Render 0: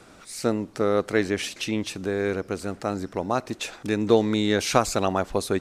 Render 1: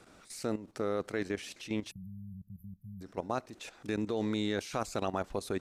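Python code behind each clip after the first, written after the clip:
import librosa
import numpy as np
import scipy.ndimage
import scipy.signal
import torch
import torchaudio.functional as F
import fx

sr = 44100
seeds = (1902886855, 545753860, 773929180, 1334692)

y = fx.spec_erase(x, sr, start_s=1.91, length_s=1.1, low_hz=210.0, high_hz=11000.0)
y = fx.level_steps(y, sr, step_db=13)
y = y * librosa.db_to_amplitude(-6.0)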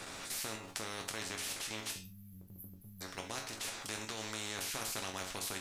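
y = fx.resonator_bank(x, sr, root=42, chord='minor', decay_s=0.26)
y = fx.spectral_comp(y, sr, ratio=4.0)
y = y * librosa.db_to_amplitude(11.5)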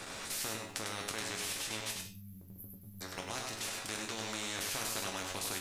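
y = x + 10.0 ** (-4.5 / 20.0) * np.pad(x, (int(99 * sr / 1000.0), 0))[:len(x)]
y = y * librosa.db_to_amplitude(1.0)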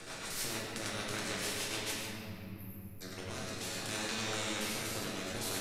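y = fx.rotary_switch(x, sr, hz=6.7, then_hz=0.6, switch_at_s=2.0)
y = fx.room_shoebox(y, sr, seeds[0], volume_m3=130.0, walls='hard', distance_m=0.56)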